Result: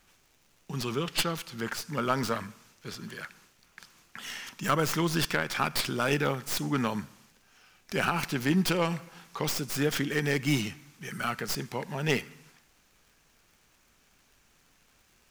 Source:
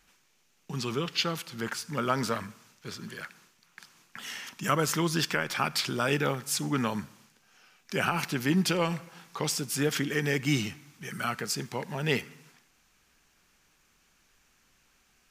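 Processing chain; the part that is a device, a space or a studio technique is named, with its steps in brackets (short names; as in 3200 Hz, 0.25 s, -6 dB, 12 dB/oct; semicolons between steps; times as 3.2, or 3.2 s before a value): record under a worn stylus (tracing distortion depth 0.11 ms; crackle; pink noise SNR 38 dB)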